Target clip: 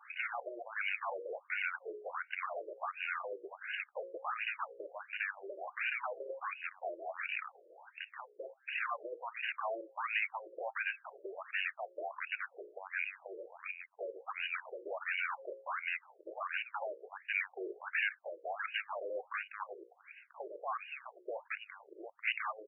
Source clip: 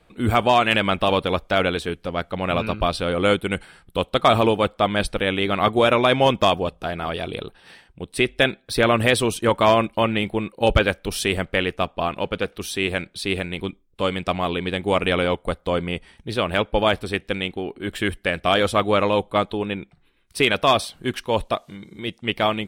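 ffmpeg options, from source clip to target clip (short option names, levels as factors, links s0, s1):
-filter_complex "[0:a]highpass=42,equalizer=f=350:t=o:w=1.7:g=-11.5,bandreject=f=60:t=h:w=6,bandreject=f=120:t=h:w=6,bandreject=f=180:t=h:w=6,bandreject=f=240:t=h:w=6,bandreject=f=300:t=h:w=6,bandreject=f=360:t=h:w=6,bandreject=f=420:t=h:w=6,bandreject=f=480:t=h:w=6,bandreject=f=540:t=h:w=6,acrossover=split=4100[s0][s1];[s1]adelay=280[s2];[s0][s2]amix=inputs=2:normalize=0,acompressor=threshold=0.0141:ratio=8,aeval=exprs='0.0133*(abs(mod(val(0)/0.0133+3,4)-2)-1)':c=same,equalizer=f=4700:t=o:w=2.2:g=14.5,afftfilt=real='re*between(b*sr/1024,430*pow(2100/430,0.5+0.5*sin(2*PI*1.4*pts/sr))/1.41,430*pow(2100/430,0.5+0.5*sin(2*PI*1.4*pts/sr))*1.41)':imag='im*between(b*sr/1024,430*pow(2100/430,0.5+0.5*sin(2*PI*1.4*pts/sr))/1.41,430*pow(2100/430,0.5+0.5*sin(2*PI*1.4*pts/sr))*1.41)':win_size=1024:overlap=0.75,volume=2.51"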